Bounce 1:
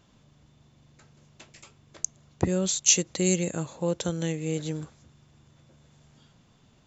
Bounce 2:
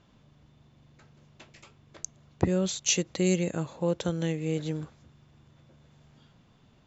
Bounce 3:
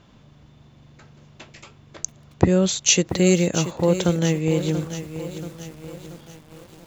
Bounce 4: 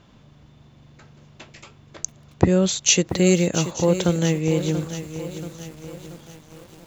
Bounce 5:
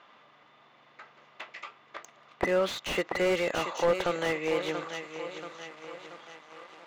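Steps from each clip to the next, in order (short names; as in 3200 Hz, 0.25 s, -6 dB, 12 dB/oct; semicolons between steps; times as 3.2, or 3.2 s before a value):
Bessel low-pass 4100 Hz, order 2
lo-fi delay 0.682 s, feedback 55%, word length 8-bit, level -11 dB; gain +8.5 dB
thin delay 0.887 s, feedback 31%, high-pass 4200 Hz, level -15 dB
BPF 750–2700 Hz; small resonant body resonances 1200/2000 Hz, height 9 dB; slew limiter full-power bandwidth 43 Hz; gain +4 dB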